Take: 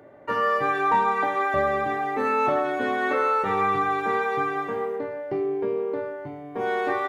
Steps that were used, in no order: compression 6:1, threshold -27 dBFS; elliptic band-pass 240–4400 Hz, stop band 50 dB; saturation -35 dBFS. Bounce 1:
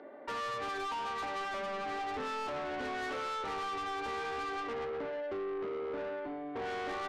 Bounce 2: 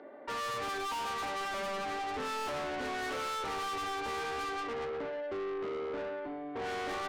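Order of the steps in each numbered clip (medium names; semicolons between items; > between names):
elliptic band-pass > compression > saturation; elliptic band-pass > saturation > compression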